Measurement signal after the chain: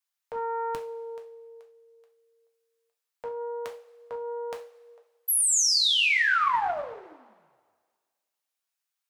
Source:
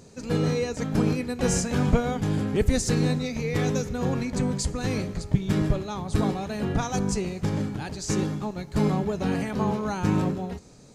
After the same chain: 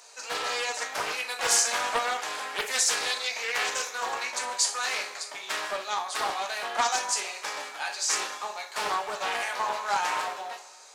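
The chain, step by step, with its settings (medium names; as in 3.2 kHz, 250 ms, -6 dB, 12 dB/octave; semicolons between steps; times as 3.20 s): high-pass 780 Hz 24 dB/octave; two-slope reverb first 0.36 s, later 1.7 s, from -18 dB, DRR 1.5 dB; loudspeaker Doppler distortion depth 0.46 ms; trim +5.5 dB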